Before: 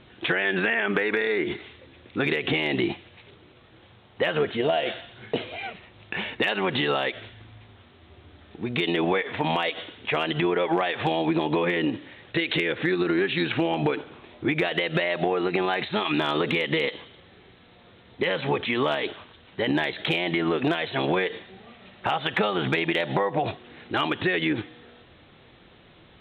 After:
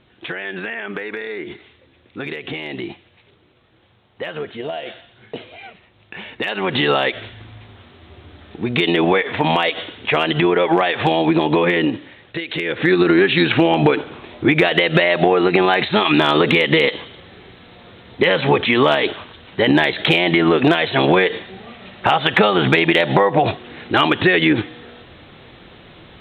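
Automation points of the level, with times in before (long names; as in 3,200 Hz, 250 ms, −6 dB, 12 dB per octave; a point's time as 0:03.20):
0:06.19 −3.5 dB
0:06.86 +8 dB
0:11.78 +8 dB
0:12.47 −2 dB
0:12.92 +10 dB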